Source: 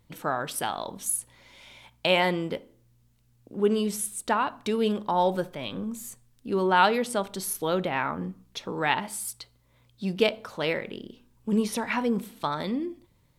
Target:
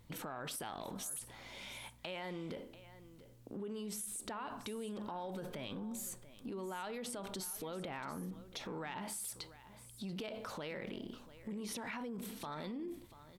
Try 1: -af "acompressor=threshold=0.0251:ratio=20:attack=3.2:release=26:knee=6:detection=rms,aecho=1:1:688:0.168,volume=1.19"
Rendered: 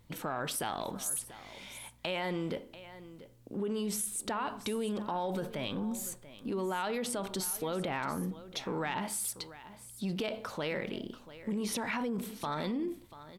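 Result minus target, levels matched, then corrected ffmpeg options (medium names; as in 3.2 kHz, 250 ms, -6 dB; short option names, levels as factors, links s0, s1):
compression: peak gain reduction -9 dB
-af "acompressor=threshold=0.00841:ratio=20:attack=3.2:release=26:knee=6:detection=rms,aecho=1:1:688:0.168,volume=1.19"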